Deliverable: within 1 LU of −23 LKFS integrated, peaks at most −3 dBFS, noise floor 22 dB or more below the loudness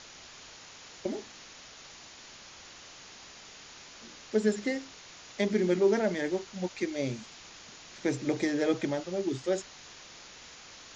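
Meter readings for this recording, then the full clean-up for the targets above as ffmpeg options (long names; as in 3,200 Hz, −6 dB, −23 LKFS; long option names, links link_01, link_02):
background noise floor −50 dBFS; target noise floor −53 dBFS; integrated loudness −31.0 LKFS; sample peak −14.0 dBFS; target loudness −23.0 LKFS
→ -af "afftdn=noise_reduction=6:noise_floor=-50"
-af "volume=8dB"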